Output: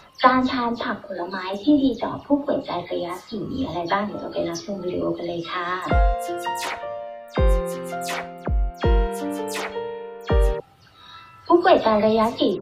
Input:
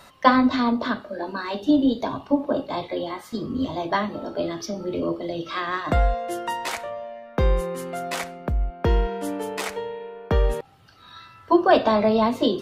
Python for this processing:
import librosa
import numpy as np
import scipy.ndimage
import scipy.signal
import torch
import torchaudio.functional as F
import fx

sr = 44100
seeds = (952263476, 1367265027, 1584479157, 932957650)

y = fx.spec_delay(x, sr, highs='early', ms=100)
y = y * 10.0 ** (1.5 / 20.0)